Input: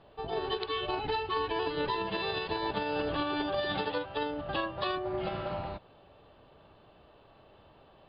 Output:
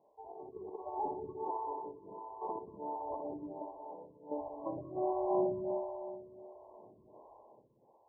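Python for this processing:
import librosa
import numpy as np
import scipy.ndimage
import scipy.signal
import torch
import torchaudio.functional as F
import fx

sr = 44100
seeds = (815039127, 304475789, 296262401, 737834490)

p1 = fx.highpass(x, sr, hz=400.0, slope=6)
p2 = fx.over_compress(p1, sr, threshold_db=-37.0, ratio=-0.5)
p3 = fx.step_gate(p2, sr, bpm=87, pattern='...x.xxxxx.', floor_db=-12.0, edge_ms=4.5)
p4 = fx.brickwall_lowpass(p3, sr, high_hz=1100.0)
p5 = p4 + fx.echo_heads(p4, sr, ms=62, heads='first and third', feedback_pct=71, wet_db=-7.0, dry=0)
p6 = fx.stagger_phaser(p5, sr, hz=1.4)
y = p6 * 10.0 ** (1.5 / 20.0)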